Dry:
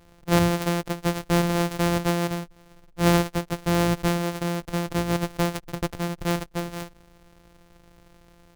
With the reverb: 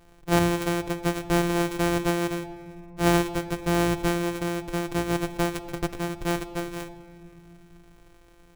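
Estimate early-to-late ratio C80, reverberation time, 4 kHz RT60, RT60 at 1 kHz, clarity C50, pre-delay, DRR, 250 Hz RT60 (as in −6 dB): 15.5 dB, 2.6 s, 1.3 s, 2.2 s, 14.5 dB, 3 ms, 6.0 dB, 3.7 s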